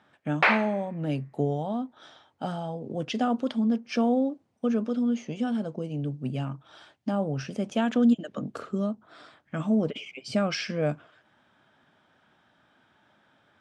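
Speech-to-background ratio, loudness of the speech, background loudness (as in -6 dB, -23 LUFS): -4.5 dB, -29.0 LUFS, -24.5 LUFS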